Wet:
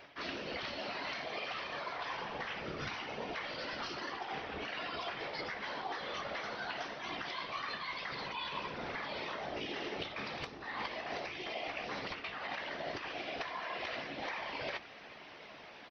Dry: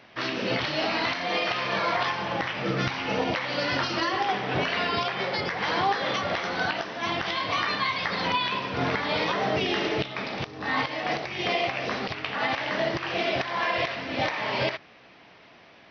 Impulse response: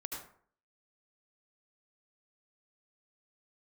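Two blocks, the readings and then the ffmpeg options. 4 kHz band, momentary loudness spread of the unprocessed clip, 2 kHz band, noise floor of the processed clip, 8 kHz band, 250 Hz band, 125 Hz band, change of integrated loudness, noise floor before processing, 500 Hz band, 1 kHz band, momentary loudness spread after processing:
-12.5 dB, 4 LU, -12.5 dB, -53 dBFS, no reading, -15.0 dB, -17.5 dB, -13.0 dB, -53 dBFS, -13.5 dB, -13.0 dB, 2 LU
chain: -filter_complex "[0:a]lowshelf=f=120:g=-12,areverse,acompressor=threshold=0.0126:ratio=16,areverse,afftfilt=real='hypot(re,im)*cos(2*PI*random(0))':imag='hypot(re,im)*sin(2*PI*random(1))':win_size=512:overlap=0.75,asplit=2[s0][s1];[s1]adelay=14,volume=0.282[s2];[s0][s2]amix=inputs=2:normalize=0,volume=2.11"

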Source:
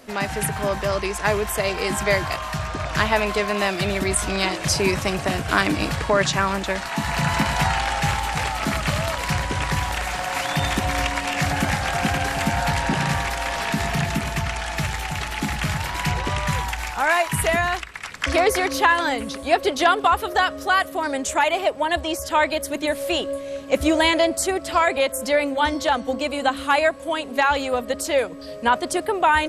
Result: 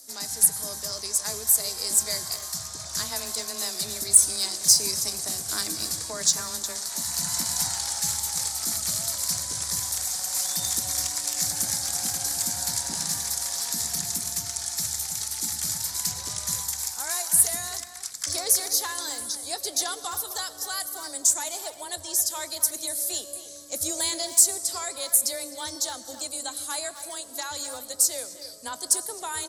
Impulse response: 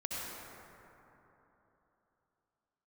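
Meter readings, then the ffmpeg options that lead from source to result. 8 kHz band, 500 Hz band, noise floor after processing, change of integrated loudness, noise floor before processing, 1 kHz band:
+9.5 dB, -17.5 dB, -42 dBFS, -2.5 dB, -35 dBFS, -17.5 dB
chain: -filter_complex "[0:a]afreqshift=16,asplit=2[s0][s1];[s1]adelay=260,highpass=300,lowpass=3400,asoftclip=type=hard:threshold=0.211,volume=0.282[s2];[s0][s2]amix=inputs=2:normalize=0,asplit=2[s3][s4];[1:a]atrim=start_sample=2205,afade=t=out:st=0.38:d=0.01,atrim=end_sample=17199,adelay=22[s5];[s4][s5]afir=irnorm=-1:irlink=0,volume=0.168[s6];[s3][s6]amix=inputs=2:normalize=0,aexciter=amount=14.3:drive=8.4:freq=4300,volume=0.126"

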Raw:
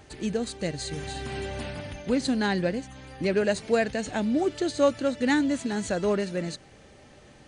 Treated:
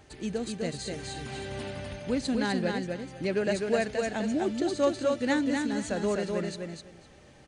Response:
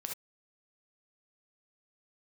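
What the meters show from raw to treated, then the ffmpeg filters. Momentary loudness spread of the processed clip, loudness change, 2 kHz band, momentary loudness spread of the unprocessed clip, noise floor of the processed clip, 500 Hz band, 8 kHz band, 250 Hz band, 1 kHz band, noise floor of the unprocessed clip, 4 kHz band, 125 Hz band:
10 LU, -2.5 dB, -2.5 dB, 11 LU, -54 dBFS, -2.5 dB, -2.5 dB, -2.5 dB, -2.5 dB, -53 dBFS, -2.5 dB, -2.5 dB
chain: -af "aecho=1:1:253|506|759:0.631|0.107|0.0182,volume=0.631"

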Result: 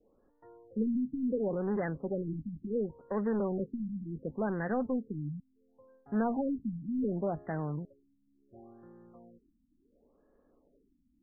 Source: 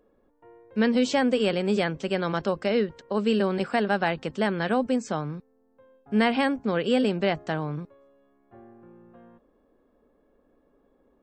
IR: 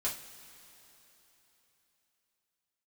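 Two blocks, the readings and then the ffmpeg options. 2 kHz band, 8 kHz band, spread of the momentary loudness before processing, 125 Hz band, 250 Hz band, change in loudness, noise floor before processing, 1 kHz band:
-16.5 dB, under -35 dB, 9 LU, -5.0 dB, -7.0 dB, -8.5 dB, -66 dBFS, -12.0 dB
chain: -filter_complex "[0:a]adynamicequalizer=threshold=0.0112:dfrequency=1200:dqfactor=0.93:tfrequency=1200:tqfactor=0.93:attack=5:release=100:ratio=0.375:range=2:mode=cutabove:tftype=bell,asplit=2[s0][s1];[s1]aeval=exprs='0.0473*(abs(mod(val(0)/0.0473+3,4)-2)-1)':c=same,volume=0.562[s2];[s0][s2]amix=inputs=2:normalize=0,afftfilt=real='re*lt(b*sr/1024,290*pow(2100/290,0.5+0.5*sin(2*PI*0.7*pts/sr)))':imag='im*lt(b*sr/1024,290*pow(2100/290,0.5+0.5*sin(2*PI*0.7*pts/sr)))':win_size=1024:overlap=0.75,volume=0.422"

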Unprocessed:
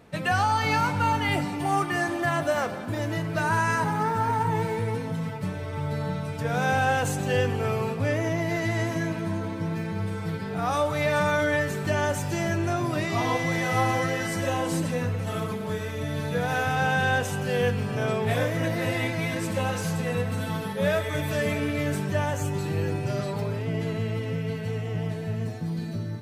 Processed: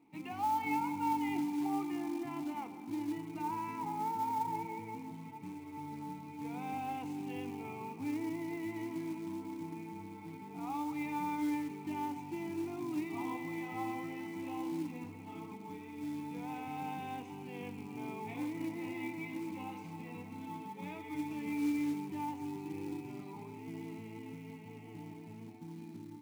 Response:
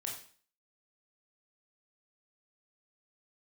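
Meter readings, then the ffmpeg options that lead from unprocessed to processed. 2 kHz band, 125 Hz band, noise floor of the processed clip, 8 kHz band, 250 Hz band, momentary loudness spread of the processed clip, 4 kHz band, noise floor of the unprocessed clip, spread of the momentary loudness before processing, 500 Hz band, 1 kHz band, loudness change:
-20.5 dB, -22.5 dB, -49 dBFS, -19.0 dB, -7.5 dB, 12 LU, -20.0 dB, -33 dBFS, 7 LU, -19.5 dB, -11.0 dB, -13.0 dB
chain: -filter_complex "[0:a]asplit=3[s0][s1][s2];[s0]bandpass=f=300:t=q:w=8,volume=1[s3];[s1]bandpass=f=870:t=q:w=8,volume=0.501[s4];[s2]bandpass=f=2240:t=q:w=8,volume=0.355[s5];[s3][s4][s5]amix=inputs=3:normalize=0,acrusher=bits=5:mode=log:mix=0:aa=0.000001,volume=0.891"

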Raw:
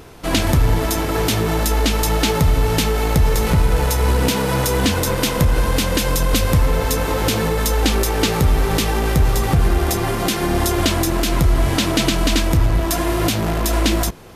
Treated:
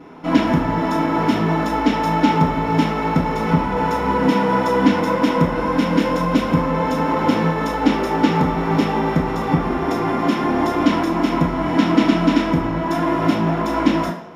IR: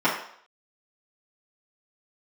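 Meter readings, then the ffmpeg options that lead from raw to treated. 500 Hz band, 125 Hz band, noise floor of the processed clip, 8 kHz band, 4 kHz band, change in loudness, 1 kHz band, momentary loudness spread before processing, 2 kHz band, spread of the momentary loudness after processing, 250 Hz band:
0.0 dB, -4.5 dB, -23 dBFS, -17.5 dB, -8.0 dB, -0.5 dB, +4.5 dB, 2 LU, -1.0 dB, 4 LU, +5.0 dB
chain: -filter_complex "[0:a]lowpass=f=4000:p=1,equalizer=f=280:t=o:w=1:g=4.5[s0];[1:a]atrim=start_sample=2205[s1];[s0][s1]afir=irnorm=-1:irlink=0,volume=0.15"

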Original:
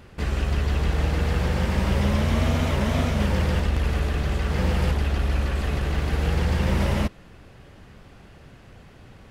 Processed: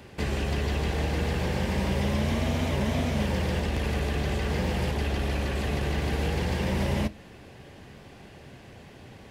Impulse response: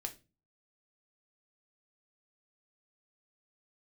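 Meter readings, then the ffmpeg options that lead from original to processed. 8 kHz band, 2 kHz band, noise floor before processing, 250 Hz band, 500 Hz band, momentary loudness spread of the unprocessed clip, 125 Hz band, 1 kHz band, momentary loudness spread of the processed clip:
-1.5 dB, -2.0 dB, -49 dBFS, -2.0 dB, -1.0 dB, 3 LU, -5.0 dB, -2.5 dB, 21 LU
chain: -filter_complex "[0:a]highpass=f=120:p=1,equalizer=f=1300:w=4:g=-8,acrossover=split=270|600[s0][s1][s2];[s0]acompressor=threshold=0.0398:ratio=4[s3];[s1]acompressor=threshold=0.0126:ratio=4[s4];[s2]acompressor=threshold=0.0141:ratio=4[s5];[s3][s4][s5]amix=inputs=3:normalize=0,asplit=2[s6][s7];[1:a]atrim=start_sample=2205[s8];[s7][s8]afir=irnorm=-1:irlink=0,volume=0.562[s9];[s6][s9]amix=inputs=2:normalize=0"

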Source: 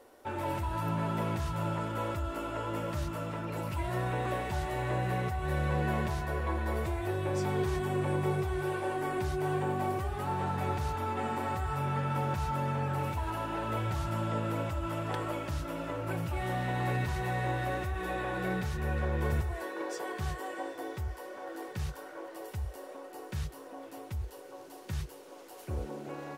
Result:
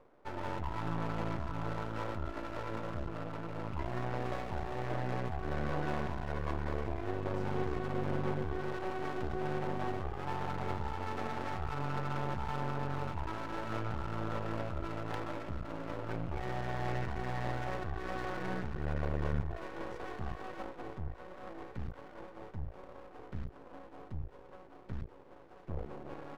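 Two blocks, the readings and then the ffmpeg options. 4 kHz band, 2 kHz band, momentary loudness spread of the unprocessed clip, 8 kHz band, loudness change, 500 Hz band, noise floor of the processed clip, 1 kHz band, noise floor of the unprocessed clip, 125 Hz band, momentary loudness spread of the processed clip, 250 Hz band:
-5.5 dB, -5.0 dB, 9 LU, -12.0 dB, -5.0 dB, -4.5 dB, -54 dBFS, -5.0 dB, -49 dBFS, -5.5 dB, 11 LU, -4.0 dB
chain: -af "adynamicsmooth=sensitivity=5:basefreq=1200,aeval=exprs='max(val(0),0)':c=same"

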